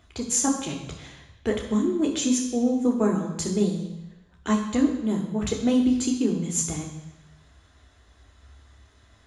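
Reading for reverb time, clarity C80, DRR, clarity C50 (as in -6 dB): 1.0 s, 8.5 dB, -0.5 dB, 6.0 dB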